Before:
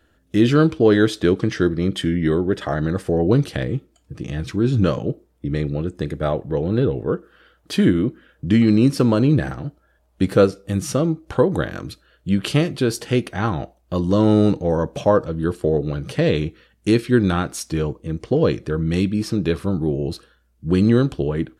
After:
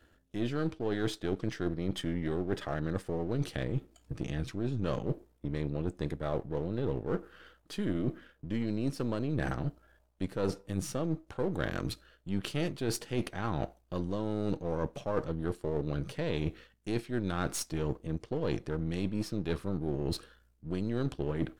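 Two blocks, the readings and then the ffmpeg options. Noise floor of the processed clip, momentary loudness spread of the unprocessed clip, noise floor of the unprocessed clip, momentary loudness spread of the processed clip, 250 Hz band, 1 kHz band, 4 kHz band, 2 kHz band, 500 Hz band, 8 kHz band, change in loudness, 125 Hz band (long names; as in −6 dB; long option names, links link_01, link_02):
−67 dBFS, 12 LU, −62 dBFS, 5 LU, −15.5 dB, −12.5 dB, −12.0 dB, −13.0 dB, −15.0 dB, −9.0 dB, −14.5 dB, −13.5 dB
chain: -af "aeval=exprs='if(lt(val(0),0),0.447*val(0),val(0))':channel_layout=same,areverse,acompressor=threshold=-28dB:ratio=10,areverse"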